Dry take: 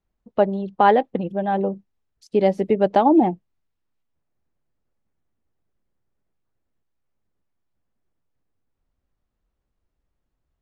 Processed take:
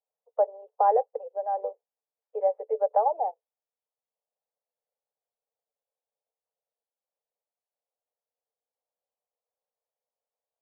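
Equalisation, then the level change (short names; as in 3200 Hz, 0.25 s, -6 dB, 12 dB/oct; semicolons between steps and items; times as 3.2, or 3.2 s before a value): Chebyshev high-pass 440 Hz, order 8; ladder low-pass 1000 Hz, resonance 25%; 0.0 dB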